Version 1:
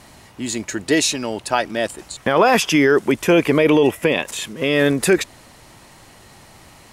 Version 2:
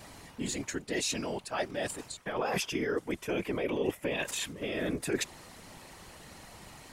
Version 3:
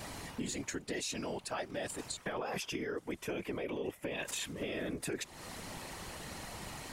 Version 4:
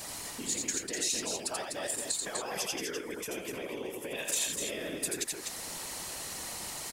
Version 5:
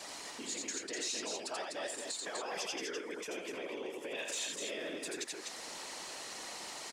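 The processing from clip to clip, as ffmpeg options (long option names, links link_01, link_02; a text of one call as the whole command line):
ffmpeg -i in.wav -af "areverse,acompressor=threshold=-26dB:ratio=5,areverse,afftfilt=real='hypot(re,im)*cos(2*PI*random(0))':imag='hypot(re,im)*sin(2*PI*random(1))':win_size=512:overlap=0.75,volume=1.5dB" out.wav
ffmpeg -i in.wav -af "acompressor=threshold=-41dB:ratio=6,volume=5dB" out.wav
ffmpeg -i in.wav -filter_complex "[0:a]bass=frequency=250:gain=-7,treble=frequency=4000:gain=11,asplit=2[link_01][link_02];[link_02]aecho=0:1:85|249:0.668|0.562[link_03];[link_01][link_03]amix=inputs=2:normalize=0,volume=-1dB" out.wav
ffmpeg -i in.wav -filter_complex "[0:a]asoftclip=type=tanh:threshold=-27dB,acrossover=split=230 7600:gain=0.141 1 0.1[link_01][link_02][link_03];[link_01][link_02][link_03]amix=inputs=3:normalize=0,volume=-1.5dB" out.wav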